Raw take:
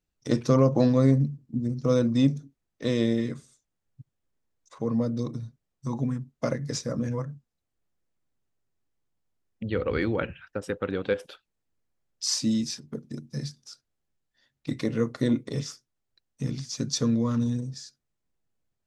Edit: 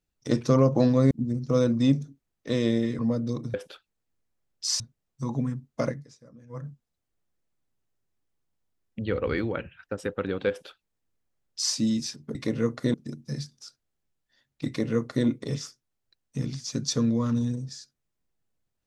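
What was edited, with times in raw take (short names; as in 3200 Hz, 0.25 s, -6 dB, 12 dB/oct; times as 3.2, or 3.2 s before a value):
1.11–1.46 cut
3.34–4.89 cut
6.53–7.29 dip -22 dB, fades 0.16 s
9.88–10.43 fade out, to -6.5 dB
11.13–12.39 copy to 5.44
14.72–15.31 copy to 12.99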